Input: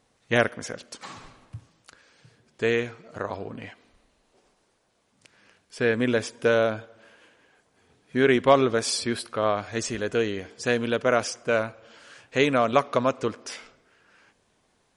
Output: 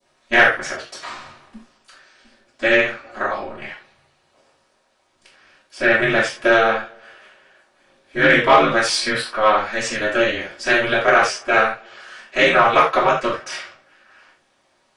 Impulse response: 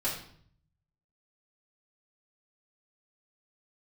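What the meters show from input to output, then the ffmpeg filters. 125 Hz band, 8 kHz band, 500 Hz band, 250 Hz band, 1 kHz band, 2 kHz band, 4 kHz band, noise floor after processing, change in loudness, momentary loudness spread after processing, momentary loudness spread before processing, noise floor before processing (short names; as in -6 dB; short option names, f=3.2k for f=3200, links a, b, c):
0.0 dB, +4.0 dB, +4.5 dB, +2.5 dB, +11.0 dB, +13.0 dB, +8.5 dB, -63 dBFS, +8.0 dB, 18 LU, 18 LU, -69 dBFS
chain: -filter_complex "[0:a]aeval=exprs='val(0)*sin(2*PI*110*n/s)':c=same[a];[1:a]atrim=start_sample=2205,atrim=end_sample=4410[b];[a][b]afir=irnorm=-1:irlink=0,asplit=2[c][d];[d]highpass=f=720:p=1,volume=13dB,asoftclip=type=tanh:threshold=-0.5dB[e];[c][e]amix=inputs=2:normalize=0,lowpass=f=6.2k:p=1,volume=-6dB,adynamicequalizer=threshold=0.0316:dfrequency=1800:dqfactor=0.8:tfrequency=1800:tqfactor=0.8:attack=5:release=100:ratio=0.375:range=3.5:mode=boostabove:tftype=bell,volume=-3.5dB"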